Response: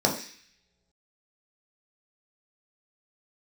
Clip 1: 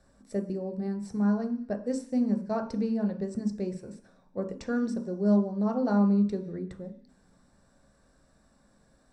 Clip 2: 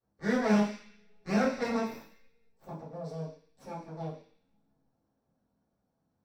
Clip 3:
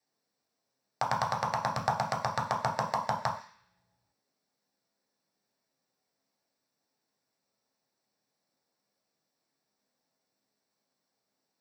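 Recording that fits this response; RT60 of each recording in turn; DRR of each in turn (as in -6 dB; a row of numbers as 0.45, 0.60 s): 3; not exponential, not exponential, not exponential; 4.5, -10.5, -1.0 dB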